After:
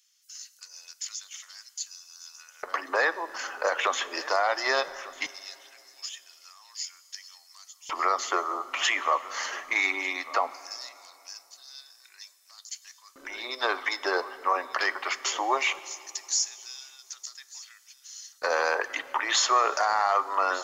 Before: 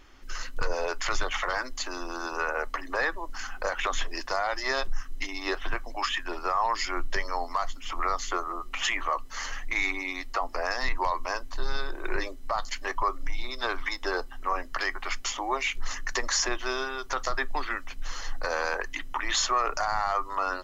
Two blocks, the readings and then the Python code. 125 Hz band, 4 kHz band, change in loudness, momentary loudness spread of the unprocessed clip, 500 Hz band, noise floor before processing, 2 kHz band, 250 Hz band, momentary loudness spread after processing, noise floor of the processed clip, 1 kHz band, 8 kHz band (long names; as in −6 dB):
below −25 dB, +1.0 dB, +2.5 dB, 8 LU, +1.0 dB, −40 dBFS, +0.5 dB, −4.5 dB, 19 LU, −60 dBFS, +1.0 dB, can't be measured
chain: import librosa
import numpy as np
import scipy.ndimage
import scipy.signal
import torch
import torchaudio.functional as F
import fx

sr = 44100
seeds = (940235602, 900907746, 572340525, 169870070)

p1 = fx.low_shelf(x, sr, hz=63.0, db=8.0)
p2 = p1 + fx.echo_single(p1, sr, ms=1197, db=-18.5, dry=0)
p3 = fx.filter_lfo_highpass(p2, sr, shape='square', hz=0.19, low_hz=440.0, high_hz=6800.0, q=1.1)
p4 = fx.rev_plate(p3, sr, seeds[0], rt60_s=2.9, hf_ratio=0.75, predelay_ms=0, drr_db=15.5)
y = p4 * 10.0 ** (2.5 / 20.0)